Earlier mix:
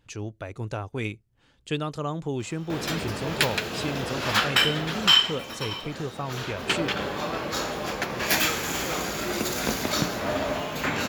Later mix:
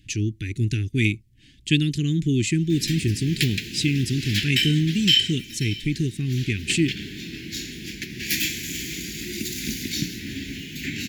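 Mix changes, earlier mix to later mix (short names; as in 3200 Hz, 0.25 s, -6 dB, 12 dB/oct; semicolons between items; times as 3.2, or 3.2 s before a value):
speech +11.0 dB; master: add inverse Chebyshev band-stop 510–1300 Hz, stop band 40 dB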